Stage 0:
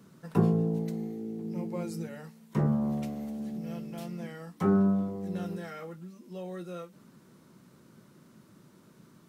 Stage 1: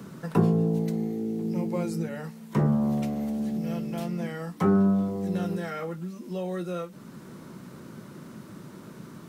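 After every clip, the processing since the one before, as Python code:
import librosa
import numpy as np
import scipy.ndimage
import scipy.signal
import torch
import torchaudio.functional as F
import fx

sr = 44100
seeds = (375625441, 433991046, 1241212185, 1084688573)

y = fx.band_squash(x, sr, depth_pct=40)
y = y * librosa.db_to_amplitude(6.0)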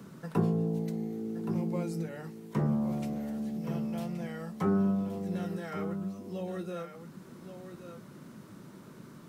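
y = x + 10.0 ** (-9.5 / 20.0) * np.pad(x, (int(1122 * sr / 1000.0), 0))[:len(x)]
y = y * librosa.db_to_amplitude(-6.0)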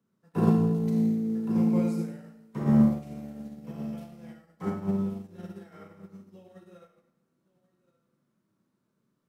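y = fx.rev_schroeder(x, sr, rt60_s=1.3, comb_ms=28, drr_db=-1.0)
y = fx.upward_expand(y, sr, threshold_db=-43.0, expansion=2.5)
y = y * librosa.db_to_amplitude(4.5)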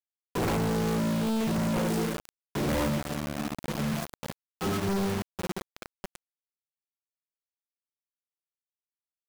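y = fx.spec_quant(x, sr, step_db=30)
y = (np.mod(10.0 ** (15.5 / 20.0) * y + 1.0, 2.0) - 1.0) / 10.0 ** (15.5 / 20.0)
y = fx.quant_companded(y, sr, bits=2)
y = y * librosa.db_to_amplitude(-1.5)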